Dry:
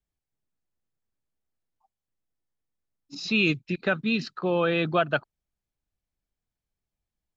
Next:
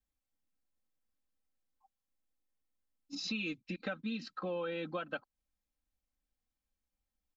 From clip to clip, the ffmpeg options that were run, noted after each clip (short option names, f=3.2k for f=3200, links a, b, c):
-af "aecho=1:1:3.8:0.99,acompressor=threshold=-31dB:ratio=4,volume=-6dB"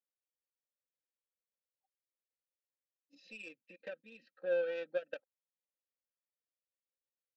-filter_complex "[0:a]asplit=3[a][b][c];[a]bandpass=f=530:t=q:w=8,volume=0dB[d];[b]bandpass=f=1.84k:t=q:w=8,volume=-6dB[e];[c]bandpass=f=2.48k:t=q:w=8,volume=-9dB[f];[d][e][f]amix=inputs=3:normalize=0,aeval=exprs='0.0237*(cos(1*acos(clip(val(0)/0.0237,-1,1)))-cos(1*PI/2))+0.00473*(cos(3*acos(clip(val(0)/0.0237,-1,1)))-cos(3*PI/2))+0.000422*(cos(7*acos(clip(val(0)/0.0237,-1,1)))-cos(7*PI/2))':c=same,volume=9dB"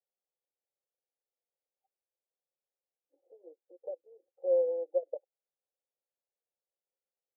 -af "asuperpass=centerf=550:order=12:qfactor=1.1,volume=6dB"